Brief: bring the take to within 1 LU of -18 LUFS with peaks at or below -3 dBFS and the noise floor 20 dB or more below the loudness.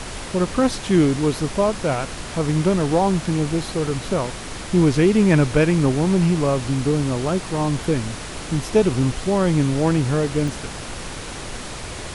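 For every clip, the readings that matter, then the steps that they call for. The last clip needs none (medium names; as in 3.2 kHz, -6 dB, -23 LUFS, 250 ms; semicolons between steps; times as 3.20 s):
dropouts 2; longest dropout 1.5 ms; noise floor -33 dBFS; noise floor target -40 dBFS; loudness -20.0 LUFS; peak level -4.0 dBFS; loudness target -18.0 LUFS
-> interpolate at 3.87/10.48 s, 1.5 ms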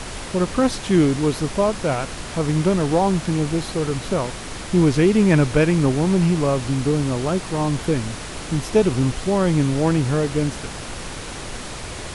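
dropouts 0; noise floor -33 dBFS; noise floor target -40 dBFS
-> noise print and reduce 7 dB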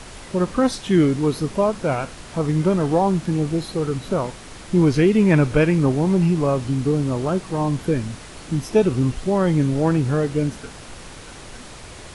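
noise floor -39 dBFS; noise floor target -41 dBFS
-> noise print and reduce 6 dB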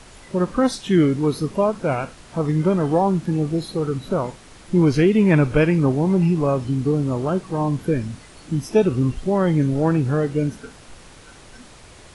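noise floor -45 dBFS; loudness -20.5 LUFS; peak level -4.0 dBFS; loudness target -18.0 LUFS
-> trim +2.5 dB; peak limiter -3 dBFS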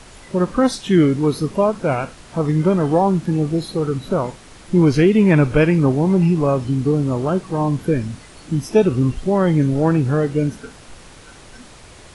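loudness -18.0 LUFS; peak level -3.0 dBFS; noise floor -43 dBFS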